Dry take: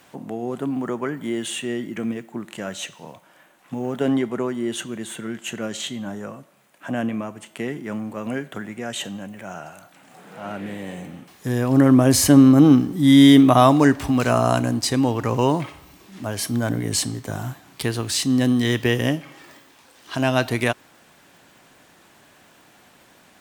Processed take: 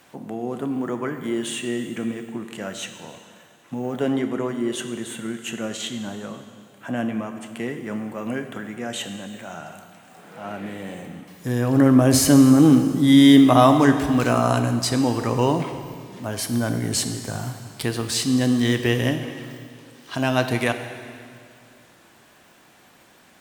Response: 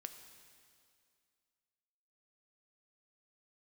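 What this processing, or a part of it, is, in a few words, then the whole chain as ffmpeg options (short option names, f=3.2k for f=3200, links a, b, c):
stairwell: -filter_complex "[1:a]atrim=start_sample=2205[a];[0:a][a]afir=irnorm=-1:irlink=0,volume=4dB"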